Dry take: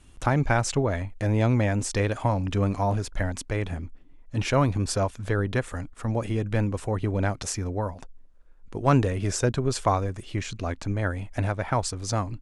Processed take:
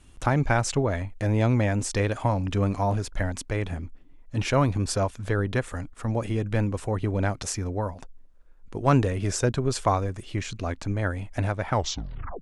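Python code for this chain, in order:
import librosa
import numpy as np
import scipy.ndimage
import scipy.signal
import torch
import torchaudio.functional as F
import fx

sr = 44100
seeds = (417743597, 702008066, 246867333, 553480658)

y = fx.tape_stop_end(x, sr, length_s=0.71)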